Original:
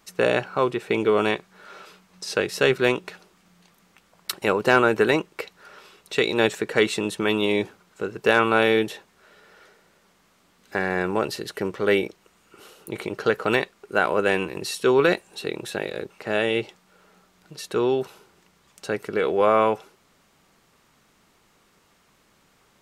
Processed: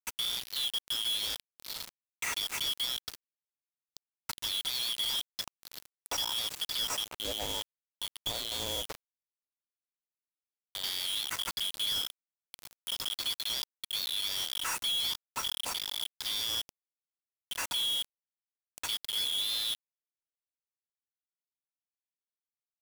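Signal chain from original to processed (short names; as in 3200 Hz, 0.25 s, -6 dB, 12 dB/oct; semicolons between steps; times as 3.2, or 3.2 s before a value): four-band scrambler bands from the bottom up 3412; 7.04–10.84 LPF 1500 Hz 12 dB/oct; dynamic EQ 600 Hz, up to -4 dB, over -43 dBFS, Q 1.2; limiter -12.5 dBFS, peak gain reduction 10 dB; compressor 3:1, threshold -35 dBFS, peak gain reduction 12.5 dB; companded quantiser 2-bit; gain -4.5 dB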